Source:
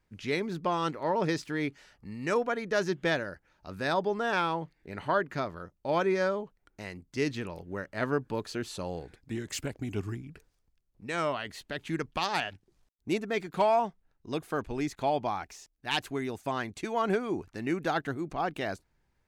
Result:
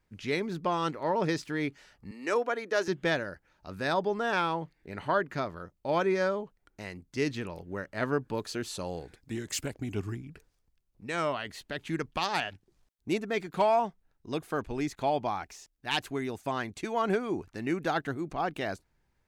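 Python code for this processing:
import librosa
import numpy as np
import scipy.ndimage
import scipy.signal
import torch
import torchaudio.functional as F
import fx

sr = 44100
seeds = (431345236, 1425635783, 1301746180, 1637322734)

y = fx.highpass(x, sr, hz=270.0, slope=24, at=(2.11, 2.88))
y = fx.bass_treble(y, sr, bass_db=-1, treble_db=4, at=(8.37, 9.75))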